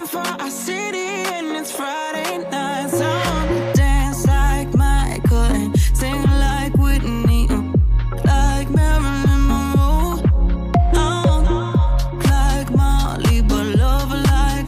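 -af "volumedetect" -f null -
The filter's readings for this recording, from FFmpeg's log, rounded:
mean_volume: -15.9 dB
max_volume: -5.5 dB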